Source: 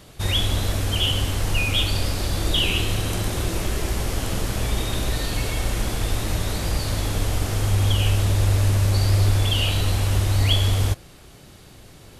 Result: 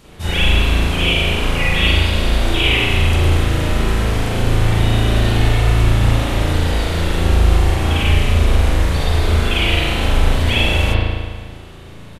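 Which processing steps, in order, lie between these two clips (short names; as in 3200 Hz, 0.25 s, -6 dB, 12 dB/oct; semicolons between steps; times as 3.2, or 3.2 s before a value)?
harmoniser -4 st -1 dB; spring tank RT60 1.6 s, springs 36 ms, chirp 25 ms, DRR -9.5 dB; gain -4 dB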